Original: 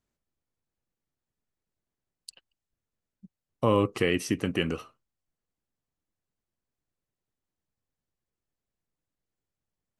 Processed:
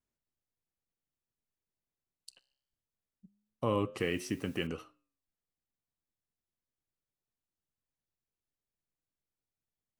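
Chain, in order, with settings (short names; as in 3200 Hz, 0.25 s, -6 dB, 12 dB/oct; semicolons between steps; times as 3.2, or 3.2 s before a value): flange 0.21 Hz, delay 7.8 ms, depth 7.7 ms, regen -89%; vibrato 0.65 Hz 20 cents; 4–4.67 requantised 10-bit, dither triangular; gain -3 dB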